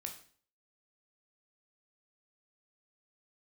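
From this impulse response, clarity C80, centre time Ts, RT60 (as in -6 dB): 13.5 dB, 16 ms, 0.50 s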